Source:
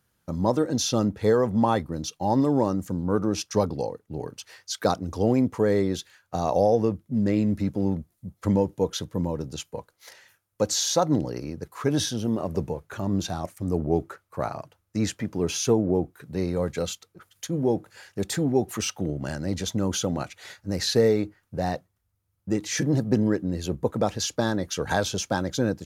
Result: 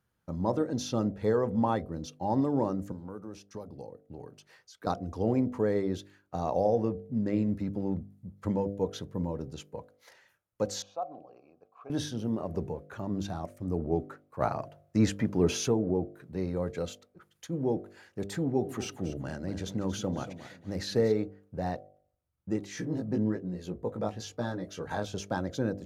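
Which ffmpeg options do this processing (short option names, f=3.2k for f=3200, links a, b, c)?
-filter_complex "[0:a]asettb=1/sr,asplit=3[a][b][c];[a]atrim=end=2.924[d];[b]atrim=start=2.92:end=4.87,asetpts=PTS-STARTPTS,afade=t=in:d=0.004:c=qsin,afade=t=out:st=1.946:d=0.004:c=qsin,acrossover=split=530|7800[e][f][g];[e]acompressor=threshold=-37dB:ratio=4[h];[f]acompressor=threshold=-44dB:ratio=4[i];[g]acompressor=threshold=-53dB:ratio=4[j];[h][i][j]amix=inputs=3:normalize=0[k];[c]atrim=start=4.866[l];[d][k]acrossfade=d=0.004:c1=hsin:c2=qsin[m];[m][l]acrossfade=d=0.004:c1=qsin:c2=hsin,asettb=1/sr,asplit=3[n][o][p];[n]atrim=end=10.824[q];[o]atrim=start=10.82:end=11.9,asetpts=PTS-STARTPTS,afade=t=in:d=0.004:c=qsin,afade=t=out:st=1.076:d=0.004:c=qsin,asplit=3[r][s][t];[r]bandpass=f=730:t=q:w=8,volume=0dB[u];[s]bandpass=f=1.09k:t=q:w=8,volume=-6dB[v];[t]bandpass=f=2.44k:t=q:w=8,volume=-9dB[w];[u][v][w]amix=inputs=3:normalize=0[x];[p]atrim=start=11.896[y];[q][x]acrossfade=d=0.004:c1=hsin:c2=qsin[z];[z][y]acrossfade=d=0.004:c1=qsin:c2=hsin,asplit=3[aa][ab][ac];[aa]afade=t=out:st=14.4:d=0.02[ad];[ab]acontrast=81,afade=t=in:st=14.4:d=0.02,afade=t=out:st=15.67:d=0.02[ae];[ac]afade=t=in:st=15.67:d=0.02[af];[ad][ae][af]amix=inputs=3:normalize=0,asettb=1/sr,asplit=3[ag][ah][ai];[ag]atrim=end=18.414[aj];[ah]atrim=start=18.41:end=21.12,asetpts=PTS-STARTPTS,afade=t=in:d=0.004:c=qsin,afade=t=out:st=2.706:d=0.004:c=qsin,aecho=1:1:234|468|702:0.224|0.0627|0.0176,atrim=end_sample=119511[ak];[ai]atrim=start=21.116[al];[aj][ak]acrossfade=d=0.004:c1=hsin:c2=qsin[am];[am][al]acrossfade=d=0.004:c1=qsin:c2=hsin,asettb=1/sr,asplit=3[an][ao][ap];[an]atrim=end=22.664[aq];[ao]atrim=start=22.66:end=25.14,asetpts=PTS-STARTPTS,afade=t=in:d=0.004:c=qsin,afade=t=out:st=2.476:d=0.004:c=qsin,flanger=delay=16.5:depth=2.8:speed=1.1[ar];[ap]atrim=start=25.136[as];[aq][ar]acrossfade=d=0.004:c1=hsin:c2=qsin[at];[at][as]acrossfade=d=0.004:c1=qsin:c2=hsin,highshelf=f=3k:g=-9.5,bandreject=f=49.76:t=h:w=4,bandreject=f=99.52:t=h:w=4,bandreject=f=149.28:t=h:w=4,bandreject=f=199.04:t=h:w=4,bandreject=f=248.8:t=h:w=4,bandreject=f=298.56:t=h:w=4,bandreject=f=348.32:t=h:w=4,bandreject=f=398.08:t=h:w=4,bandreject=f=447.84:t=h:w=4,bandreject=f=497.6:t=h:w=4,bandreject=f=547.36:t=h:w=4,bandreject=f=597.12:t=h:w=4,bandreject=f=646.88:t=h:w=4,bandreject=f=696.64:t=h:w=4,bandreject=f=746.4:t=h:w=4,volume=-5dB"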